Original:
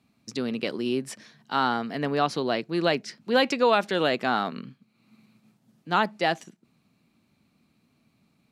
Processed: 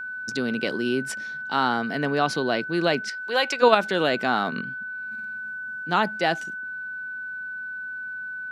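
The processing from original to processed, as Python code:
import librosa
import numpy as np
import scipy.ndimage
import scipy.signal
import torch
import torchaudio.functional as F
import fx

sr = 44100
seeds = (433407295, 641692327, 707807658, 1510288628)

p1 = fx.highpass(x, sr, hz=590.0, slope=12, at=(3.08, 3.61), fade=0.02)
p2 = fx.level_steps(p1, sr, step_db=19)
p3 = p1 + F.gain(torch.from_numpy(p2), -1.0).numpy()
y = p3 + 10.0 ** (-31.0 / 20.0) * np.sin(2.0 * np.pi * 1500.0 * np.arange(len(p3)) / sr)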